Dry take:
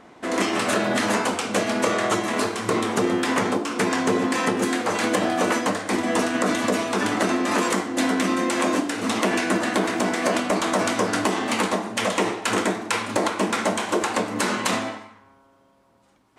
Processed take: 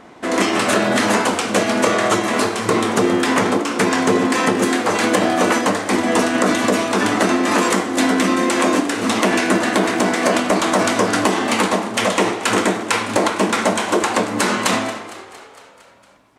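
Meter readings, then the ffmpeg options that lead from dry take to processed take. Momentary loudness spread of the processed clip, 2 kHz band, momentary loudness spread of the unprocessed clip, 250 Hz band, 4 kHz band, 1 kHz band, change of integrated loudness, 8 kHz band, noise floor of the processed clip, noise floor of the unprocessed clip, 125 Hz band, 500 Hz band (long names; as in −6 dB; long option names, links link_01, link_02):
3 LU, +5.5 dB, 3 LU, +5.5 dB, +5.5 dB, +5.5 dB, +5.5 dB, +5.5 dB, −44 dBFS, −58 dBFS, +5.5 dB, +5.5 dB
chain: -filter_complex "[0:a]asplit=7[link_01][link_02][link_03][link_04][link_05][link_06][link_07];[link_02]adelay=229,afreqshift=60,volume=-16.5dB[link_08];[link_03]adelay=458,afreqshift=120,volume=-20.5dB[link_09];[link_04]adelay=687,afreqshift=180,volume=-24.5dB[link_10];[link_05]adelay=916,afreqshift=240,volume=-28.5dB[link_11];[link_06]adelay=1145,afreqshift=300,volume=-32.6dB[link_12];[link_07]adelay=1374,afreqshift=360,volume=-36.6dB[link_13];[link_01][link_08][link_09][link_10][link_11][link_12][link_13]amix=inputs=7:normalize=0,volume=5.5dB"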